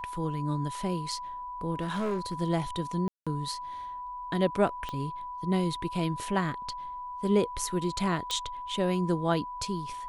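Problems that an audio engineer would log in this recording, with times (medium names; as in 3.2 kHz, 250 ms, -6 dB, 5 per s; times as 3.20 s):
whine 990 Hz -36 dBFS
1.75–2.34 s: clipped -26.5 dBFS
3.08–3.27 s: dropout 186 ms
4.89 s: pop -22 dBFS
8.31 s: pop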